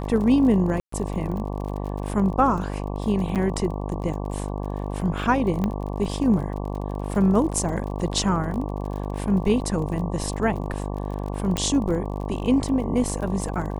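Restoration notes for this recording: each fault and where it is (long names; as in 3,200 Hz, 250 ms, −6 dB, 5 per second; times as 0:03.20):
mains buzz 50 Hz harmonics 23 −29 dBFS
surface crackle 40 per second −32 dBFS
0:00.80–0:00.92: drop-out 124 ms
0:03.35–0:03.36: drop-out 7.9 ms
0:05.64: click −14 dBFS
0:11.57: click −10 dBFS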